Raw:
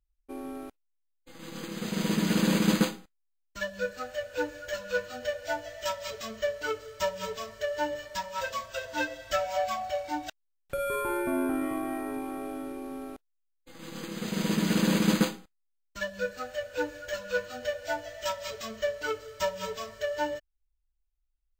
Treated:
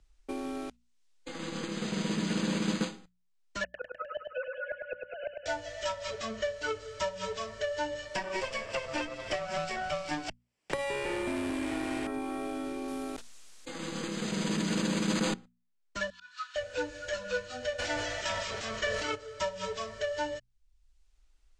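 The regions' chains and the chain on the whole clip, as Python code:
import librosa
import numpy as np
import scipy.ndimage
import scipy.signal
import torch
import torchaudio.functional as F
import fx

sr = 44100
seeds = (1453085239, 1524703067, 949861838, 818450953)

y = fx.chain(x, sr, fx.sine_speech(),
    fx.gate_flip(shuts_db=-27.0, range_db=-28),
    fx.echo_feedback(ms=102, feedback_pct=59, wet_db=-5.0), at=(3.64, 5.46))
y = fx.chain(y, sr, fx.lower_of_two(delay_ms=0.39),
    fx.band_squash(depth_pct=100), at=(8.15, 12.07))
y = fx.chain(y, sr, fx.high_shelf(hz=8200.0, db=10.5),
    fx.sustainer(db_per_s=23.0), at=(12.88, 15.34))
y = fx.chain(y, sr, fx.high_shelf(hz=9700.0, db=-10.5),
    fx.auto_swell(attack_ms=208.0),
    fx.cheby_ripple_highpass(hz=950.0, ripple_db=9), at=(16.1, 16.56))
y = fx.spec_clip(y, sr, under_db=16, at=(17.78, 19.14), fade=0.02)
y = fx.sustainer(y, sr, db_per_s=31.0, at=(17.78, 19.14), fade=0.02)
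y = scipy.signal.sosfilt(scipy.signal.butter(4, 8200.0, 'lowpass', fs=sr, output='sos'), y)
y = fx.hum_notches(y, sr, base_hz=60, count=4)
y = fx.band_squash(y, sr, depth_pct=70)
y = y * 10.0 ** (-2.5 / 20.0)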